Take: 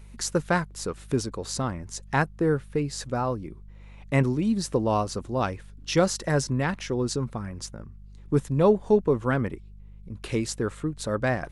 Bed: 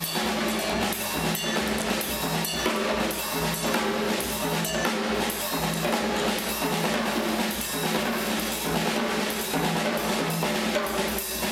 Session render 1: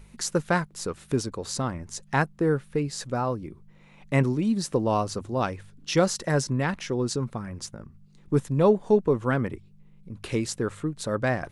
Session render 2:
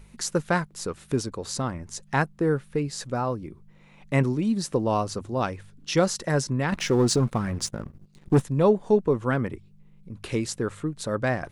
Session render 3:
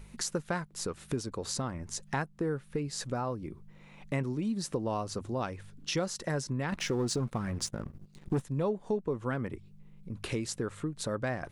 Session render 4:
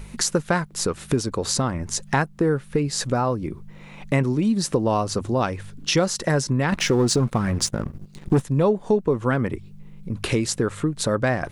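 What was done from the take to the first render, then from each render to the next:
hum removal 50 Hz, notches 2
0:06.72–0:08.42: leveller curve on the samples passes 2
downward compressor 2.5 to 1, threshold −33 dBFS, peak gain reduction 12.5 dB
level +11.5 dB

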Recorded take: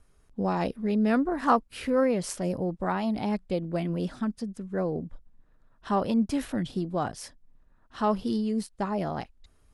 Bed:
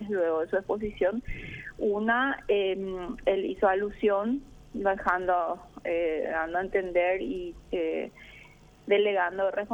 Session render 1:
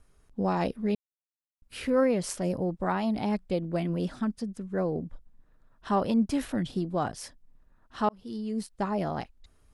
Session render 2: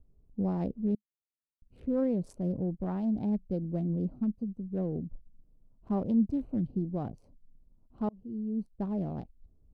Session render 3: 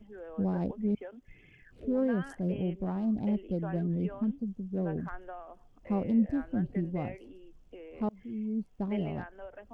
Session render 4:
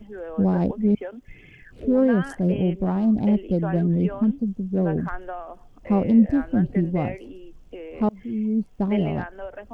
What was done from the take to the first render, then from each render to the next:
0:00.95–0:01.62: silence; 0:08.09–0:08.76: fade in
adaptive Wiener filter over 25 samples; drawn EQ curve 210 Hz 0 dB, 730 Hz −10 dB, 1,300 Hz −18 dB
mix in bed −18.5 dB
level +10 dB

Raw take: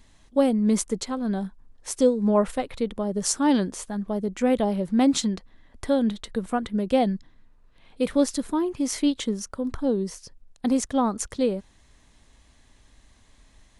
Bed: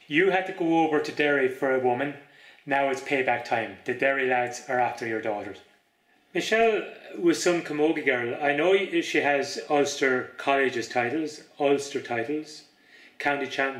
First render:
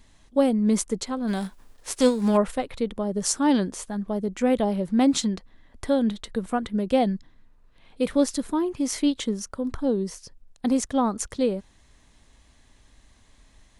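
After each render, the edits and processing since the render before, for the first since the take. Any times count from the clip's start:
0:01.27–0:02.36: spectral envelope flattened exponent 0.6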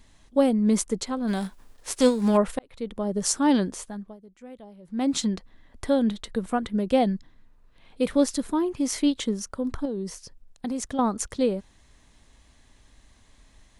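0:02.59–0:03.07: fade in
0:03.71–0:05.28: duck −22 dB, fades 0.46 s
0:09.85–0:10.99: downward compressor 4 to 1, threshold −27 dBFS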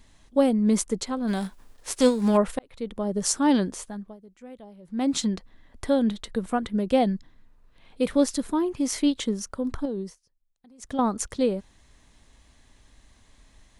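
0:10.00–0:10.94: duck −24 dB, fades 0.16 s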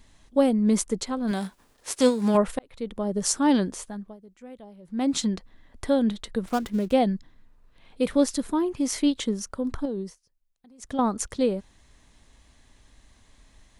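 0:01.31–0:02.35: high-pass filter 110 Hz 6 dB per octave
0:06.44–0:06.93: gap after every zero crossing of 0.11 ms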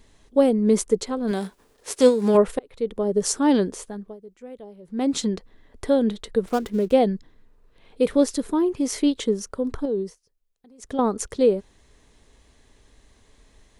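parametric band 430 Hz +10 dB 0.54 octaves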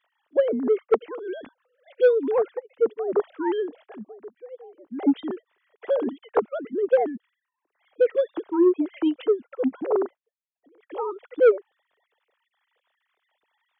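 three sine waves on the formant tracks
soft clipping −10 dBFS, distortion −14 dB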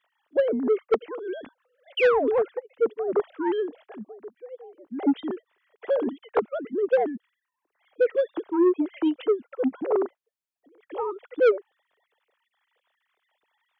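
0:01.97–0:02.30: sound drawn into the spectrogram fall 370–3,200 Hz −25 dBFS
soft clipping −12.5 dBFS, distortion −18 dB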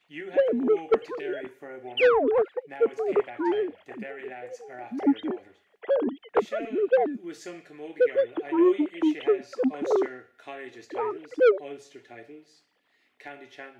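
mix in bed −17 dB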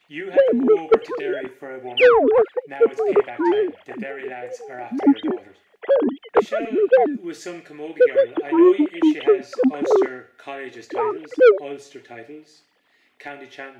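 level +7 dB

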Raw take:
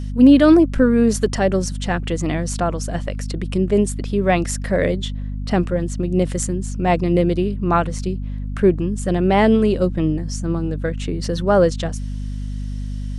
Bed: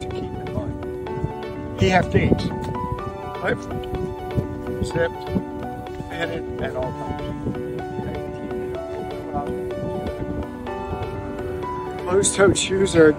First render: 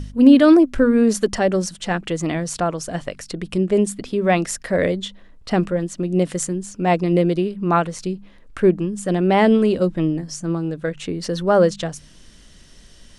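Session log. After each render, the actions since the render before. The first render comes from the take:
hum removal 50 Hz, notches 5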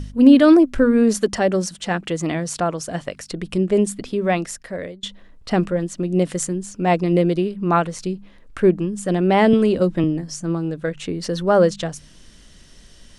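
0:01.18–0:03.30: high-pass filter 61 Hz 6 dB per octave
0:04.05–0:05.03: fade out, to −22 dB
0:09.53–0:10.04: multiband upward and downward compressor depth 70%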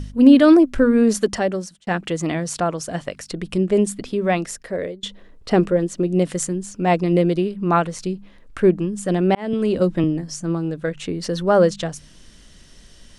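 0:01.31–0:01.87: fade out
0:04.47–0:06.07: parametric band 420 Hz +7 dB
0:09.35–0:09.79: fade in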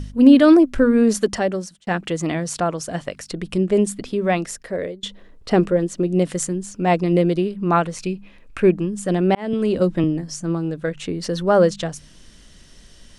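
0:07.97–0:08.72: parametric band 2,500 Hz +12.5 dB 0.23 octaves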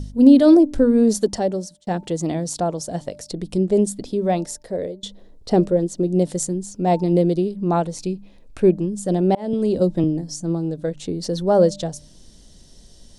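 flat-topped bell 1,800 Hz −11.5 dB
hum removal 296.3 Hz, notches 3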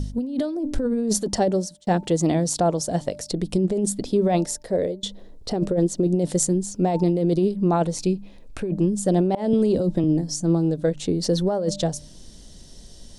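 compressor whose output falls as the input rises −20 dBFS, ratio −1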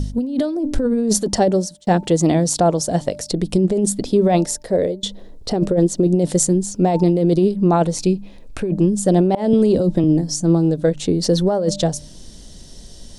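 level +5 dB
brickwall limiter −1 dBFS, peak gain reduction 1.5 dB

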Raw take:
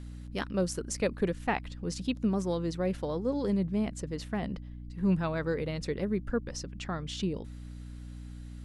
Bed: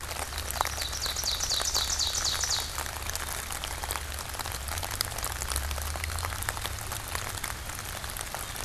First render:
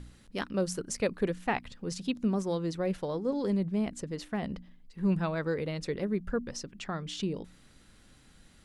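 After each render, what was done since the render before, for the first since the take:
hum removal 60 Hz, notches 5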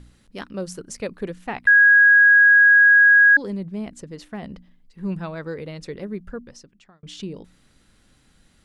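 0:01.67–0:03.37: beep over 1,650 Hz −9 dBFS
0:06.15–0:07.03: fade out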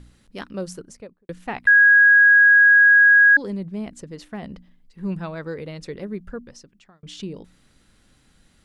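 0:00.63–0:01.29: fade out and dull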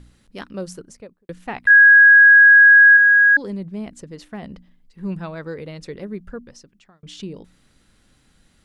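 0:01.70–0:02.97: high-shelf EQ 2,300 Hz +10.5 dB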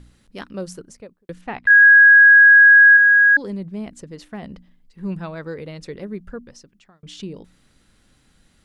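0:01.41–0:01.83: high-frequency loss of the air 89 metres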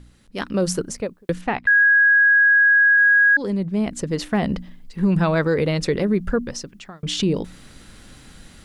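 automatic gain control gain up to 14 dB
brickwall limiter −11 dBFS, peak gain reduction 10.5 dB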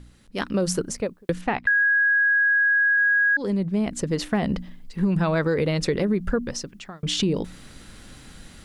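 downward compressor, threshold −18 dBFS, peak gain reduction 5 dB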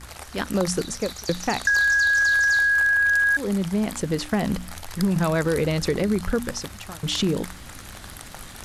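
mix in bed −5.5 dB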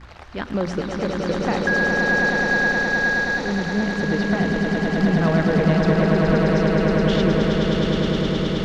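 high-frequency loss of the air 220 metres
echo that builds up and dies away 105 ms, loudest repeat 8, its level −5 dB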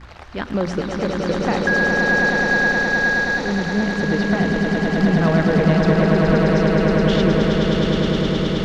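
level +2 dB

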